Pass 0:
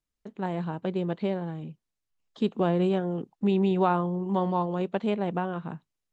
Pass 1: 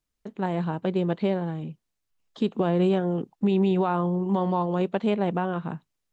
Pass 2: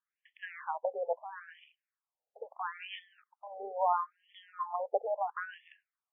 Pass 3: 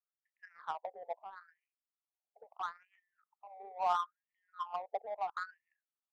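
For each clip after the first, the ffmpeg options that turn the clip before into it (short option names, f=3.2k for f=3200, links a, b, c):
-af "alimiter=limit=-18.5dB:level=0:latency=1:release=116,volume=4dB"
-af "afftfilt=real='re*between(b*sr/1024,590*pow(2500/590,0.5+0.5*sin(2*PI*0.75*pts/sr))/1.41,590*pow(2500/590,0.5+0.5*sin(2*PI*0.75*pts/sr))*1.41)':imag='im*between(b*sr/1024,590*pow(2500/590,0.5+0.5*sin(2*PI*0.75*pts/sr))/1.41,590*pow(2500/590,0.5+0.5*sin(2*PI*0.75*pts/sr))*1.41)':win_size=1024:overlap=0.75"
-af "highpass=310,equalizer=f=360:t=q:w=4:g=-6,equalizer=f=520:t=q:w=4:g=-10,equalizer=f=730:t=q:w=4:g=5,equalizer=f=1.3k:t=q:w=4:g=10,lowpass=f=2.1k:w=0.5412,lowpass=f=2.1k:w=1.3066,adynamicsmooth=sensitivity=2.5:basefreq=840,volume=-5.5dB"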